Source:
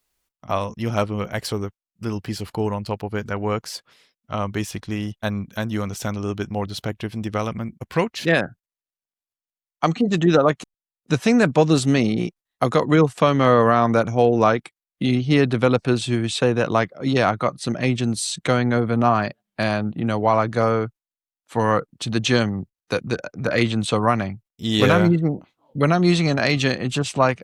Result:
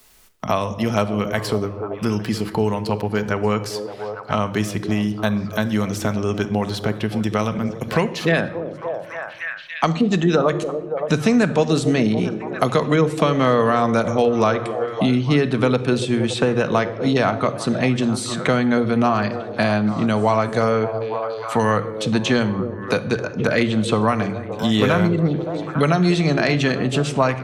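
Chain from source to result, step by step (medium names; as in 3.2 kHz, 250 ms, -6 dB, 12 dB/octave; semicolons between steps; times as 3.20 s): repeats whose band climbs or falls 284 ms, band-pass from 390 Hz, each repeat 0.7 oct, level -10 dB; on a send at -10 dB: reverberation RT60 0.80 s, pre-delay 5 ms; on the sum: three bands compressed up and down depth 70%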